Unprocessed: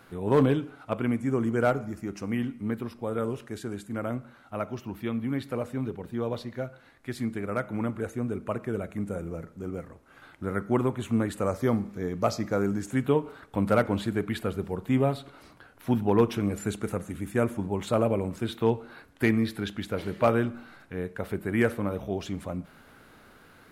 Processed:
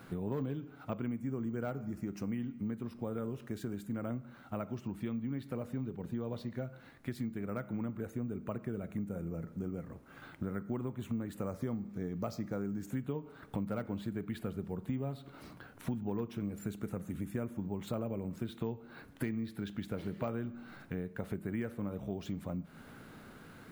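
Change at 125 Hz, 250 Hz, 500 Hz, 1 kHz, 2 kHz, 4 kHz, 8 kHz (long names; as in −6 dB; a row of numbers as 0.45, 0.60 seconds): −8.0, −8.5, −13.5, −14.5, −14.0, −12.5, −12.0 decibels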